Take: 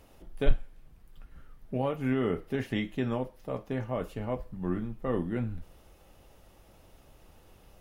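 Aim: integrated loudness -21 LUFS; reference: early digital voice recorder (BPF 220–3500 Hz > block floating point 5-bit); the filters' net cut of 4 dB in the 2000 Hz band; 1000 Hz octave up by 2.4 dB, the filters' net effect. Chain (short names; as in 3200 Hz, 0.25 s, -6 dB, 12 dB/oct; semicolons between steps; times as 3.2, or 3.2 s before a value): BPF 220–3500 Hz; bell 1000 Hz +4.5 dB; bell 2000 Hz -6 dB; block floating point 5-bit; gain +13.5 dB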